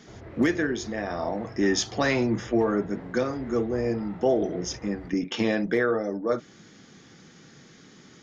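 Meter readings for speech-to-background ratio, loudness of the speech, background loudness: 16.5 dB, -27.0 LUFS, -43.5 LUFS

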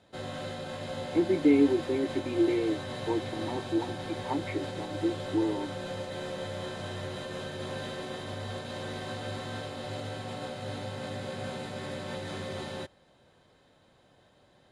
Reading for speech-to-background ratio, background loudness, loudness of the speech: 8.0 dB, -37.5 LUFS, -29.5 LUFS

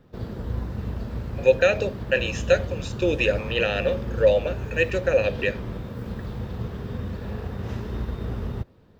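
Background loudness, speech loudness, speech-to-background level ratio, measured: -32.5 LUFS, -23.5 LUFS, 9.0 dB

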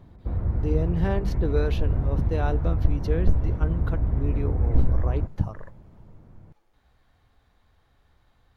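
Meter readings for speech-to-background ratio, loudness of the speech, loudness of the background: -4.0 dB, -31.0 LUFS, -27.0 LUFS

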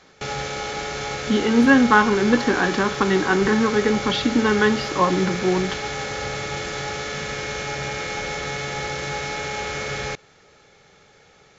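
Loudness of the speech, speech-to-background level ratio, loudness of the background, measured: -19.5 LUFS, 8.0 dB, -27.5 LUFS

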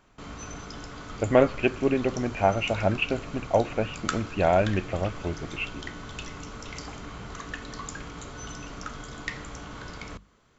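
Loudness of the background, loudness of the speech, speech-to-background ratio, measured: -39.0 LUFS, -26.5 LUFS, 12.5 dB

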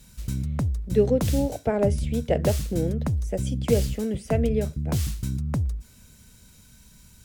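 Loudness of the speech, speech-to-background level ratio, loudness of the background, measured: -27.0 LUFS, 2.0 dB, -29.0 LUFS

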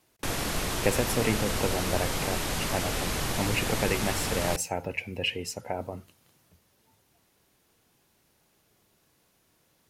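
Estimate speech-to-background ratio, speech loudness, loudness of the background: -1.5 dB, -31.5 LUFS, -30.0 LUFS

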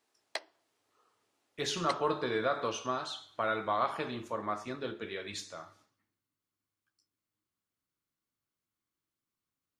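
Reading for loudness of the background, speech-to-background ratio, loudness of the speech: -44.0 LUFS, 9.5 dB, -34.5 LUFS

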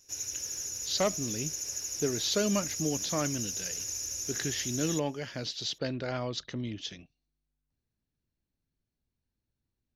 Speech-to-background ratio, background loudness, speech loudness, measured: 0.0 dB, -33.5 LUFS, -33.5 LUFS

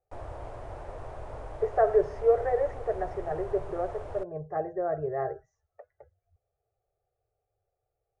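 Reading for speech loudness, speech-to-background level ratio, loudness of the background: -29.5 LUFS, 13.0 dB, -42.5 LUFS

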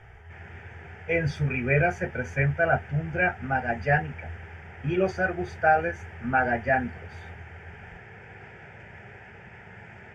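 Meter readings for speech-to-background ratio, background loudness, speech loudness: 20.0 dB, -46.0 LUFS, -26.0 LUFS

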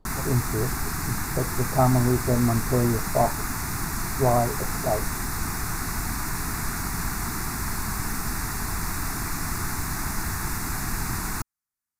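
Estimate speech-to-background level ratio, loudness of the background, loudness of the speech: 3.5 dB, -29.0 LUFS, -25.5 LUFS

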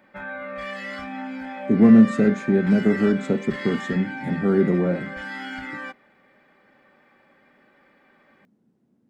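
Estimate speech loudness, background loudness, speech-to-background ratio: -20.0 LUFS, -33.0 LUFS, 13.0 dB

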